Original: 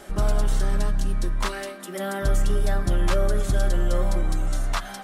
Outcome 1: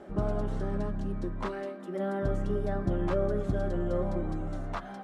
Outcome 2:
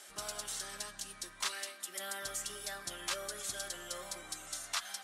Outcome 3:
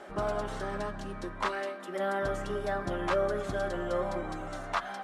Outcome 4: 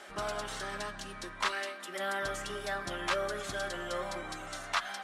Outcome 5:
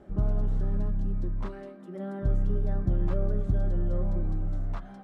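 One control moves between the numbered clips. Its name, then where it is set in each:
band-pass, frequency: 280, 7400, 840, 2200, 110 Hz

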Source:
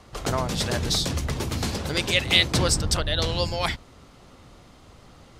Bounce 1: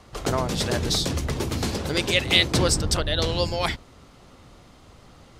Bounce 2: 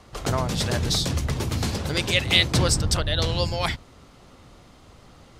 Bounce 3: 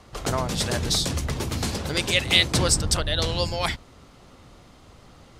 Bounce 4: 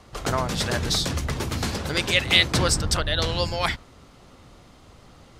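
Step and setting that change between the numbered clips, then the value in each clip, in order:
dynamic EQ, frequency: 370, 110, 9100, 1500 Hz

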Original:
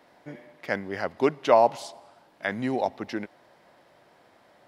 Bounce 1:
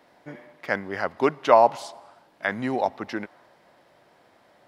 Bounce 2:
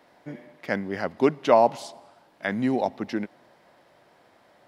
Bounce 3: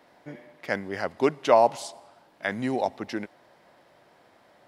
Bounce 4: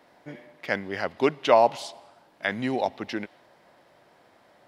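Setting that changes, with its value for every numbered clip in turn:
dynamic EQ, frequency: 1200, 210, 8500, 3100 Hz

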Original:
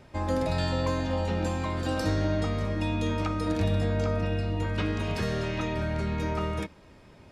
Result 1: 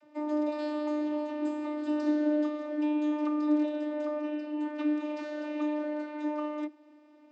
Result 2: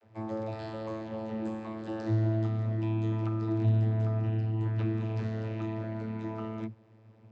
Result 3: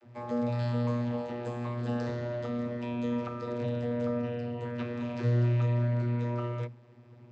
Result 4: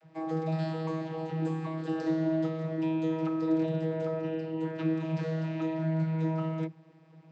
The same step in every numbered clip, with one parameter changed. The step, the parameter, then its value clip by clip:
vocoder, frequency: 300, 110, 120, 160 Hz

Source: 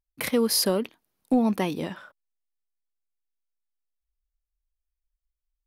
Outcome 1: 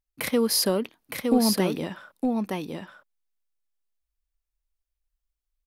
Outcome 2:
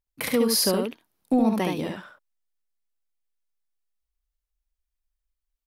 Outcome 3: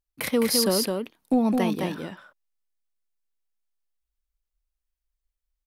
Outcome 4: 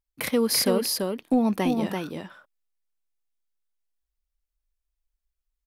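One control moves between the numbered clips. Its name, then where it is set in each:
echo, time: 914, 71, 211, 337 ms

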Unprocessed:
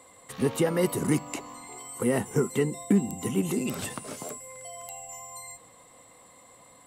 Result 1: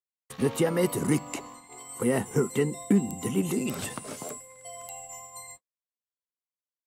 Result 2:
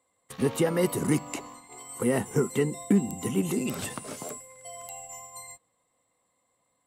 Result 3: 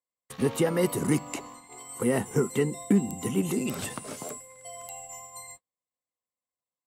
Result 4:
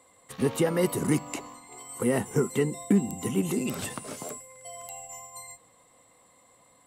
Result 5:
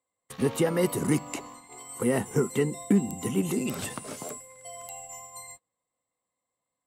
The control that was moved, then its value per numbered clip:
gate, range: -57, -20, -45, -6, -32 dB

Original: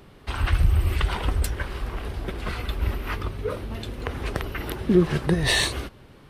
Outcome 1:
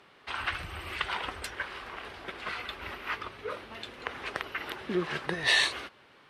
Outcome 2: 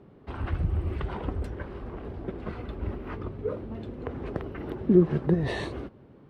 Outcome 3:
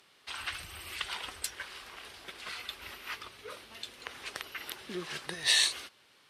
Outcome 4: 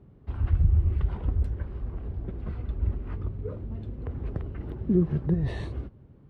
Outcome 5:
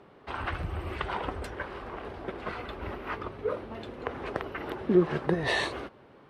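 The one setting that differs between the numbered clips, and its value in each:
band-pass, frequency: 2000, 270, 5700, 100, 700 Hz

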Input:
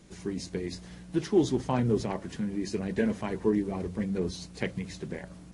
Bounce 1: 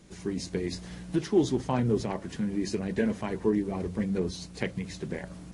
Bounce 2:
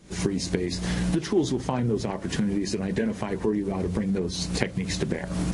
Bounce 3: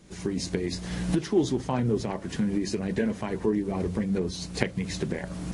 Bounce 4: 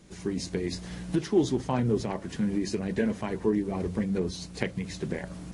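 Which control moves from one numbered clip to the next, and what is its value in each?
recorder AGC, rising by: 5.1, 85, 34, 13 dB/s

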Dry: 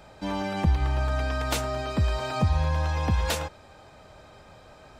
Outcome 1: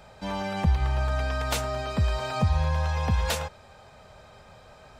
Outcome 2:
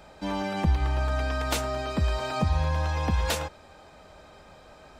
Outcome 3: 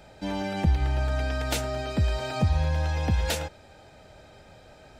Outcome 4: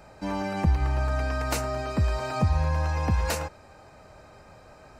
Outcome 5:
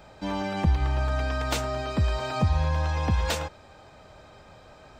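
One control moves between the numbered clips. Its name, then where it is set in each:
bell, frequency: 310, 110, 1100, 3400, 11000 Hz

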